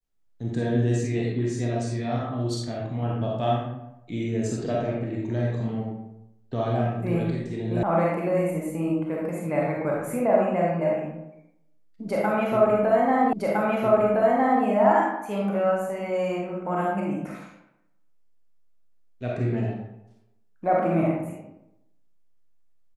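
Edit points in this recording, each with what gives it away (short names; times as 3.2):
7.83 sound cut off
13.33 repeat of the last 1.31 s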